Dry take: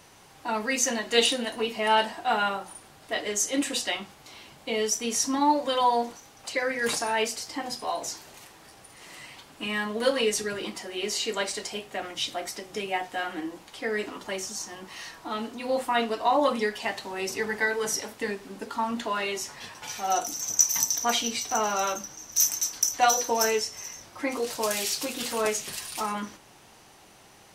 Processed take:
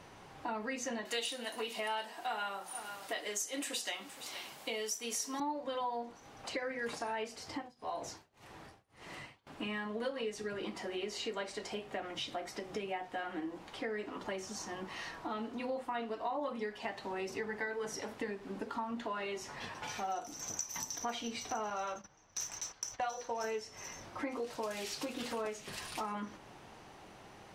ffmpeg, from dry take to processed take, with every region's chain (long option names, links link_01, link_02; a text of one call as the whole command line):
ffmpeg -i in.wav -filter_complex "[0:a]asettb=1/sr,asplit=3[link_01][link_02][link_03];[link_01]atrim=end=1.054[link_04];[link_02]atrim=start=1.05:end=5.4,asetpts=PTS-STARTPTS,afade=type=in:duration=0.004:curve=qsin,afade=type=out:start_time=4.346:duration=0.004:curve=qsin,aemphasis=mode=production:type=riaa,asoftclip=type=hard:threshold=-4dB,aecho=1:1:469:0.0944,atrim=end_sample=191835[link_05];[link_03]atrim=start=5.396[link_06];[link_04][link_05]acrossfade=duration=0.004:curve1=hsin:curve2=qsin[link_07];[link_07][link_06]acrossfade=duration=0.004:curve1=qsin:curve2=hsin,asettb=1/sr,asplit=3[link_08][link_09][link_10];[link_08]atrim=end=7.474[link_11];[link_09]atrim=start=7.47:end=9.47,asetpts=PTS-STARTPTS,afade=type=in:duration=0.004:curve=qsin,afade=type=out:start_time=1.996:duration=0.004:curve=qsin,equalizer=frequency=93:width=1.4:gain=6.5,tremolo=f=1.8:d=0.97[link_12];[link_10]atrim=start=9.466[link_13];[link_11][link_12]acrossfade=duration=0.004:curve1=hsin:curve2=qsin[link_14];[link_14][link_13]acrossfade=duration=0.004:curve1=qsin:curve2=hsin,asettb=1/sr,asplit=3[link_15][link_16][link_17];[link_15]atrim=end=21.704[link_18];[link_16]atrim=start=21.7:end=23.44,asetpts=PTS-STARTPTS,afade=type=in:duration=0.004:curve=qsin,afade=type=out:start_time=1.736:duration=0.004:curve=qsin,agate=range=-13dB:threshold=-38dB:ratio=16:release=100:detection=peak,adynamicsmooth=sensitivity=7:basefreq=6300,equalizer=frequency=280:width=1.7:gain=-8.5[link_19];[link_17]atrim=start=23.436[link_20];[link_18][link_19]acrossfade=duration=0.004:curve1=hsin:curve2=qsin[link_21];[link_21][link_20]acrossfade=duration=0.004:curve1=qsin:curve2=hsin,lowpass=frequency=1900:poles=1,acompressor=threshold=-39dB:ratio=4,volume=1.5dB" out.wav